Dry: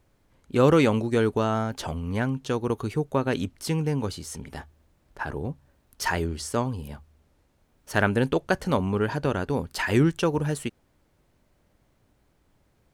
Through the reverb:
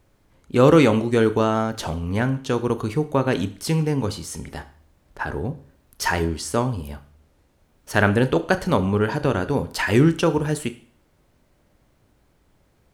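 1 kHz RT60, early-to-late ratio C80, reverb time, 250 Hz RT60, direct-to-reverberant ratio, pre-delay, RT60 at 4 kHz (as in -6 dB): 0.50 s, 19.5 dB, 0.50 s, 0.50 s, 11.0 dB, 28 ms, 0.50 s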